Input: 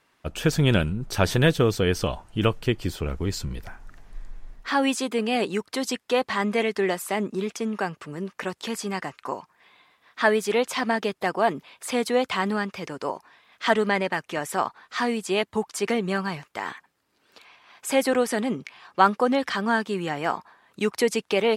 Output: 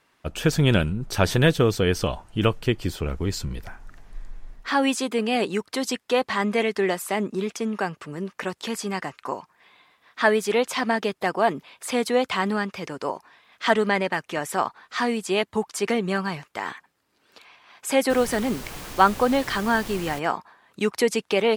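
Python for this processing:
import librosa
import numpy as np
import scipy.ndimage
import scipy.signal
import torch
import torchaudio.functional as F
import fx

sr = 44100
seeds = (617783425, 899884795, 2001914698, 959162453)

y = fx.dmg_noise_colour(x, sr, seeds[0], colour='pink', level_db=-38.0, at=(18.09, 20.18), fade=0.02)
y = y * librosa.db_to_amplitude(1.0)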